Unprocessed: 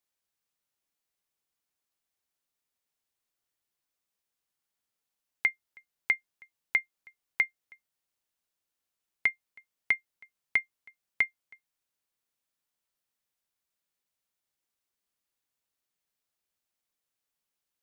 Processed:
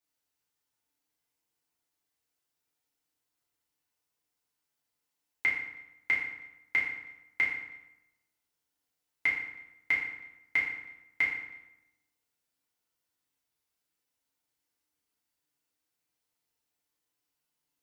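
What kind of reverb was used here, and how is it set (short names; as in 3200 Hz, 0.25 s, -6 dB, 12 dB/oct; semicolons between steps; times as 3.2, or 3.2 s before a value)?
FDN reverb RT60 0.91 s, low-frequency decay 1.2×, high-frequency decay 0.75×, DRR -6.5 dB; gain -5 dB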